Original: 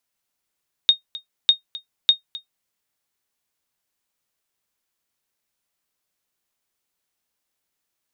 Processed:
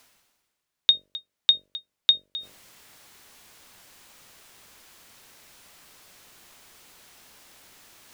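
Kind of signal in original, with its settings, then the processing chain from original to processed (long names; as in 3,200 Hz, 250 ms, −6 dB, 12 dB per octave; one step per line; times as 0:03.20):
ping with an echo 3,710 Hz, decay 0.12 s, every 0.60 s, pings 3, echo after 0.26 s, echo −19 dB −4.5 dBFS
high-shelf EQ 7,500 Hz −7 dB
hum removal 47.96 Hz, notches 13
reversed playback
upward compression, threshold −29 dBFS
reversed playback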